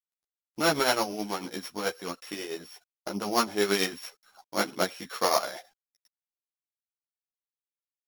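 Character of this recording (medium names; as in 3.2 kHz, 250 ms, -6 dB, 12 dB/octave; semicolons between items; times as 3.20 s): a buzz of ramps at a fixed pitch in blocks of 8 samples; tremolo triangle 9.2 Hz, depth 70%; a quantiser's noise floor 12-bit, dither none; a shimmering, thickened sound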